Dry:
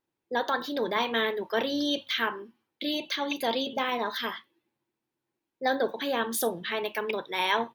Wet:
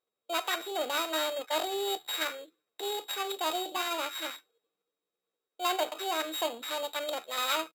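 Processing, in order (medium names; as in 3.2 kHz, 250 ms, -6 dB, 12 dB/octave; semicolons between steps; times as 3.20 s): sorted samples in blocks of 16 samples; pitch shift +5.5 st; tone controls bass -12 dB, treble -5 dB; trim -2 dB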